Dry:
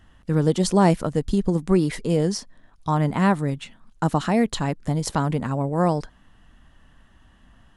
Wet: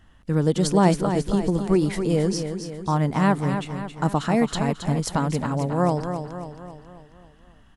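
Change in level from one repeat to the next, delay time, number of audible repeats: -5.5 dB, 0.271 s, 5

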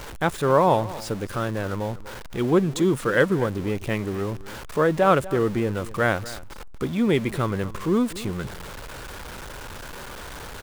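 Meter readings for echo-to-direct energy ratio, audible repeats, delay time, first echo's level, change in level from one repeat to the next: -17.5 dB, 1, 0.243 s, -17.5 dB, no steady repeat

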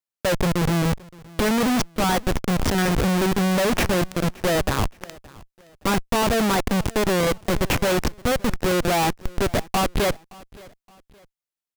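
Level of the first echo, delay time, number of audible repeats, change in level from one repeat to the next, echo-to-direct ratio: -23.0 dB, 0.57 s, 2, -8.5 dB, -22.5 dB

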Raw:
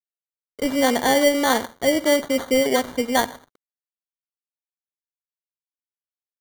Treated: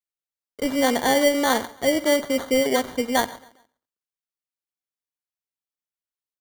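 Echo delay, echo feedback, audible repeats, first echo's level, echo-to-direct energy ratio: 0.137 s, 39%, 2, -22.5 dB, -22.0 dB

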